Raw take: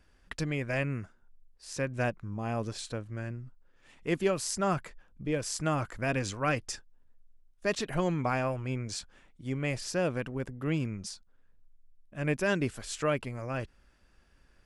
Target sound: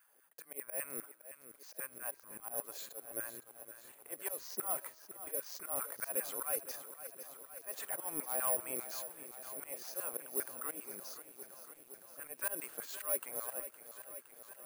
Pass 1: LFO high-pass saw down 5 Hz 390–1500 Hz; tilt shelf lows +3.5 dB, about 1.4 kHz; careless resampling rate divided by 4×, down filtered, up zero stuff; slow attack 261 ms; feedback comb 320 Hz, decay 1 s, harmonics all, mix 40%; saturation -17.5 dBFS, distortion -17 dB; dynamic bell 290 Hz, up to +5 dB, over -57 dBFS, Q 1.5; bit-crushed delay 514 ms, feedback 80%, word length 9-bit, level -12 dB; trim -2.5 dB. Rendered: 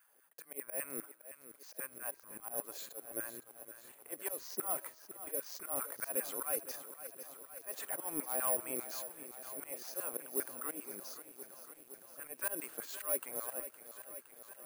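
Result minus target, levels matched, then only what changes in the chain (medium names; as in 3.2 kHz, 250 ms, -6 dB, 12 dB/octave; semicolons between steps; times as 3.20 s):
250 Hz band +4.0 dB
remove: dynamic bell 290 Hz, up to +5 dB, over -57 dBFS, Q 1.5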